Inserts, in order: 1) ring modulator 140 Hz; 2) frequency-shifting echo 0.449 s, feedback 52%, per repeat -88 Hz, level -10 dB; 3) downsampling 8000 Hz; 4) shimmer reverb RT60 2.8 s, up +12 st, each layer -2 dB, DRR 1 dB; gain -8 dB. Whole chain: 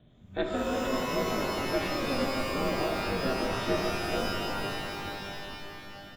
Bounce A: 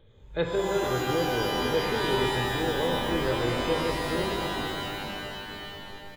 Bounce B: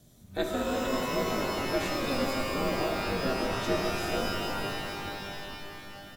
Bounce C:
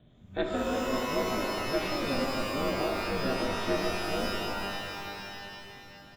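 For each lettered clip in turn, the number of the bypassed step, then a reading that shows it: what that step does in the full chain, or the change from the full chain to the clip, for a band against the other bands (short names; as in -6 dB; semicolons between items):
1, crest factor change -1.5 dB; 3, 8 kHz band +2.0 dB; 2, 125 Hz band -1.5 dB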